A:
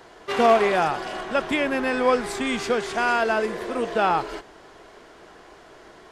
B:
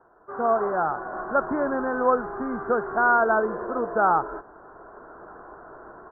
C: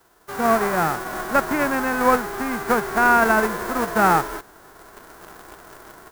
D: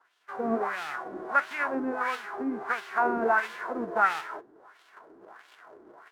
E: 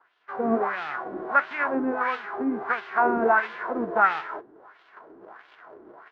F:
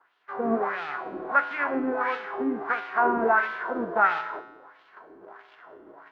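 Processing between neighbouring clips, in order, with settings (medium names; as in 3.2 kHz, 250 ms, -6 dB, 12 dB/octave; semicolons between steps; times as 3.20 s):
steep low-pass 1.5 kHz 72 dB/octave; tilt shelf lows -5 dB, about 1.1 kHz; level rider gain up to 14 dB; trim -7.5 dB
formants flattened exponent 0.3; in parallel at -5.5 dB: word length cut 6-bit, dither none
flange 1.1 Hz, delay 6.5 ms, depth 8.1 ms, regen +69%; wah-wah 1.5 Hz 300–3200 Hz, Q 2.3; trim +3.5 dB
distance through air 260 m; trim +5 dB
feedback comb 57 Hz, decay 0.99 s, harmonics odd, mix 70%; trim +8 dB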